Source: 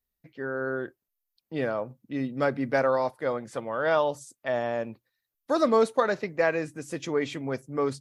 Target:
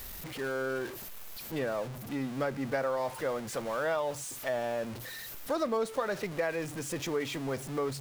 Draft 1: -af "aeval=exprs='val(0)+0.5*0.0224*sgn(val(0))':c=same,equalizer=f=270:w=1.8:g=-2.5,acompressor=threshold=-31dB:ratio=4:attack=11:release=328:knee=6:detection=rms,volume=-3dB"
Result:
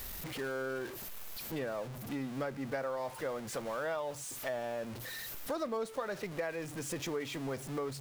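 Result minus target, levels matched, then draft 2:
compressor: peak gain reduction +5.5 dB
-af "aeval=exprs='val(0)+0.5*0.0224*sgn(val(0))':c=same,equalizer=f=270:w=1.8:g=-2.5,acompressor=threshold=-23.5dB:ratio=4:attack=11:release=328:knee=6:detection=rms,volume=-3dB"

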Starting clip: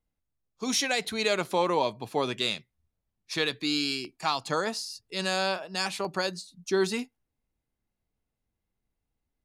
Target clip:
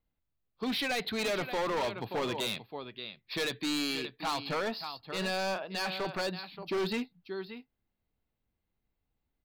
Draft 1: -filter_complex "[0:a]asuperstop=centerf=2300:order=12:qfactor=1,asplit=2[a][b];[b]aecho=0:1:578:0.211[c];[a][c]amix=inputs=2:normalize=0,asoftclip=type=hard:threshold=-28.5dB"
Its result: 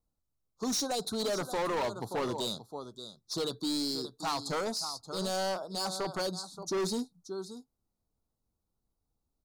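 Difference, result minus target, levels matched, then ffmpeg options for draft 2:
2000 Hz band -7.5 dB
-filter_complex "[0:a]asuperstop=centerf=8100:order=12:qfactor=1,asplit=2[a][b];[b]aecho=0:1:578:0.211[c];[a][c]amix=inputs=2:normalize=0,asoftclip=type=hard:threshold=-28.5dB"

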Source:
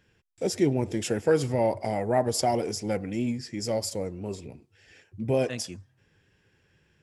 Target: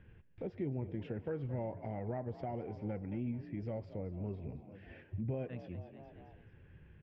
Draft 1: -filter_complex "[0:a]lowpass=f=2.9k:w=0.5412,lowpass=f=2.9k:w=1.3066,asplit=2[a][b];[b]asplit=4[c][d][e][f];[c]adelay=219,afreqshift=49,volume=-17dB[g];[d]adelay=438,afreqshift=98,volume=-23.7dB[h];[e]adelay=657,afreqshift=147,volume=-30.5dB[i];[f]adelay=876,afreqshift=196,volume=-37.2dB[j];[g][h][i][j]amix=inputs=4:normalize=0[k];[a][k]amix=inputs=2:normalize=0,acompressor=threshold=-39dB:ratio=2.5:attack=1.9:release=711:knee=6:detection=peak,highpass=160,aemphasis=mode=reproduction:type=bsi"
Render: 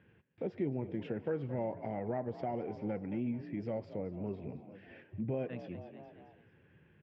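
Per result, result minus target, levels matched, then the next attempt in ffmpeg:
125 Hz band -4.5 dB; compressor: peak gain reduction -4 dB
-filter_complex "[0:a]lowpass=f=2.9k:w=0.5412,lowpass=f=2.9k:w=1.3066,asplit=2[a][b];[b]asplit=4[c][d][e][f];[c]adelay=219,afreqshift=49,volume=-17dB[g];[d]adelay=438,afreqshift=98,volume=-23.7dB[h];[e]adelay=657,afreqshift=147,volume=-30.5dB[i];[f]adelay=876,afreqshift=196,volume=-37.2dB[j];[g][h][i][j]amix=inputs=4:normalize=0[k];[a][k]amix=inputs=2:normalize=0,acompressor=threshold=-39dB:ratio=2.5:attack=1.9:release=711:knee=6:detection=peak,aemphasis=mode=reproduction:type=bsi"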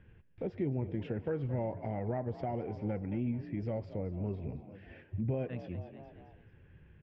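compressor: peak gain reduction -4 dB
-filter_complex "[0:a]lowpass=f=2.9k:w=0.5412,lowpass=f=2.9k:w=1.3066,asplit=2[a][b];[b]asplit=4[c][d][e][f];[c]adelay=219,afreqshift=49,volume=-17dB[g];[d]adelay=438,afreqshift=98,volume=-23.7dB[h];[e]adelay=657,afreqshift=147,volume=-30.5dB[i];[f]adelay=876,afreqshift=196,volume=-37.2dB[j];[g][h][i][j]amix=inputs=4:normalize=0[k];[a][k]amix=inputs=2:normalize=0,acompressor=threshold=-46dB:ratio=2.5:attack=1.9:release=711:knee=6:detection=peak,aemphasis=mode=reproduction:type=bsi"

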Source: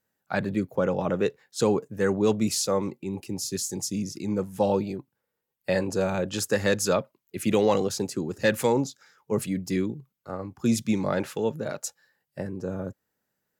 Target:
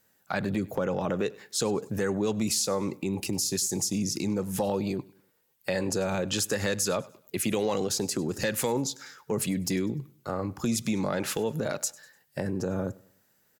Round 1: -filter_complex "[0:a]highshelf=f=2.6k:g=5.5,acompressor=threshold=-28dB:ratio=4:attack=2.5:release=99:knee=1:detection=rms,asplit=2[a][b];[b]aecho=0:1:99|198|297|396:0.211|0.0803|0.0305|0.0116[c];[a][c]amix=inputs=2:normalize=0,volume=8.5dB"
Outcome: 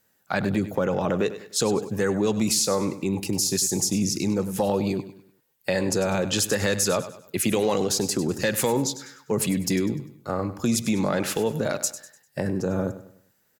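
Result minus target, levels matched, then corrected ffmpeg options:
echo-to-direct +9 dB; compressor: peak gain reduction -4.5 dB
-filter_complex "[0:a]highshelf=f=2.6k:g=5.5,acompressor=threshold=-34dB:ratio=4:attack=2.5:release=99:knee=1:detection=rms,asplit=2[a][b];[b]aecho=0:1:99|198|297:0.075|0.0285|0.0108[c];[a][c]amix=inputs=2:normalize=0,volume=8.5dB"

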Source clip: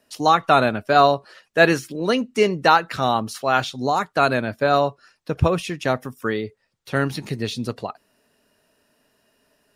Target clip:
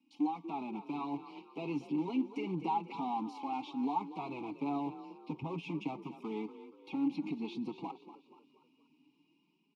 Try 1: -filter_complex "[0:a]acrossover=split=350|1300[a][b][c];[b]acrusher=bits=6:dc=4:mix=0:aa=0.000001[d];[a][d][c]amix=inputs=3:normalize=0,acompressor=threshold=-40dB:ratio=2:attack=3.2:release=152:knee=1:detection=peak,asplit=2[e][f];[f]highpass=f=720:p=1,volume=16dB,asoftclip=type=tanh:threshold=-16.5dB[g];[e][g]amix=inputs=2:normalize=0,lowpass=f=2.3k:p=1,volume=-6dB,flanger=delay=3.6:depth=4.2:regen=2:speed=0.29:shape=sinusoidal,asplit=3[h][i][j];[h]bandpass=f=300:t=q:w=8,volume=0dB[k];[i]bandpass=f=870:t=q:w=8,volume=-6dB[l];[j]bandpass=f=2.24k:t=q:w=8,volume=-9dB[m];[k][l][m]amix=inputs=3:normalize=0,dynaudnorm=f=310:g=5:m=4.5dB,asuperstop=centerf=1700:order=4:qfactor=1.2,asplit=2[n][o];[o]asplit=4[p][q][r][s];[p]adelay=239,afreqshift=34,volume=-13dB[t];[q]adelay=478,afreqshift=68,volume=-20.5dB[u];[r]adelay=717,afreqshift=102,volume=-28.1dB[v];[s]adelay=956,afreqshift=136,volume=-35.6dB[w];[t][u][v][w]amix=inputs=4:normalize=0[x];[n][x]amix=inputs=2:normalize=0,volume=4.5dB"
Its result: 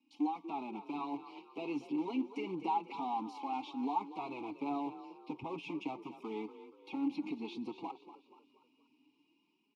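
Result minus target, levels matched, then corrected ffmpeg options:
125 Hz band -8.5 dB
-filter_complex "[0:a]acrossover=split=350|1300[a][b][c];[b]acrusher=bits=6:dc=4:mix=0:aa=0.000001[d];[a][d][c]amix=inputs=3:normalize=0,acompressor=threshold=-40dB:ratio=2:attack=3.2:release=152:knee=1:detection=peak,equalizer=f=160:w=2.1:g=12.5,asplit=2[e][f];[f]highpass=f=720:p=1,volume=16dB,asoftclip=type=tanh:threshold=-16.5dB[g];[e][g]amix=inputs=2:normalize=0,lowpass=f=2.3k:p=1,volume=-6dB,flanger=delay=3.6:depth=4.2:regen=2:speed=0.29:shape=sinusoidal,asplit=3[h][i][j];[h]bandpass=f=300:t=q:w=8,volume=0dB[k];[i]bandpass=f=870:t=q:w=8,volume=-6dB[l];[j]bandpass=f=2.24k:t=q:w=8,volume=-9dB[m];[k][l][m]amix=inputs=3:normalize=0,dynaudnorm=f=310:g=5:m=4.5dB,asuperstop=centerf=1700:order=4:qfactor=1.2,asplit=2[n][o];[o]asplit=4[p][q][r][s];[p]adelay=239,afreqshift=34,volume=-13dB[t];[q]adelay=478,afreqshift=68,volume=-20.5dB[u];[r]adelay=717,afreqshift=102,volume=-28.1dB[v];[s]adelay=956,afreqshift=136,volume=-35.6dB[w];[t][u][v][w]amix=inputs=4:normalize=0[x];[n][x]amix=inputs=2:normalize=0,volume=4.5dB"

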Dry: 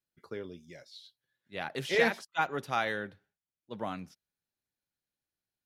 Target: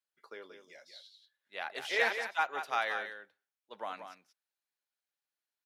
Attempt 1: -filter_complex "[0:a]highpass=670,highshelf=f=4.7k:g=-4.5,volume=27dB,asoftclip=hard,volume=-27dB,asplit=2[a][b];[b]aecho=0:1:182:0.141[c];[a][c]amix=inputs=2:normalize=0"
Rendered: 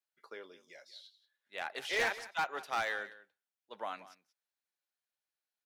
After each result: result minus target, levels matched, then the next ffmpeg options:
overloaded stage: distortion +29 dB; echo-to-direct -8.5 dB
-filter_complex "[0:a]highpass=670,highshelf=f=4.7k:g=-4.5,volume=17dB,asoftclip=hard,volume=-17dB,asplit=2[a][b];[b]aecho=0:1:182:0.141[c];[a][c]amix=inputs=2:normalize=0"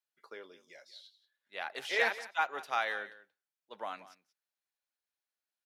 echo-to-direct -8.5 dB
-filter_complex "[0:a]highpass=670,highshelf=f=4.7k:g=-4.5,volume=17dB,asoftclip=hard,volume=-17dB,asplit=2[a][b];[b]aecho=0:1:182:0.376[c];[a][c]amix=inputs=2:normalize=0"

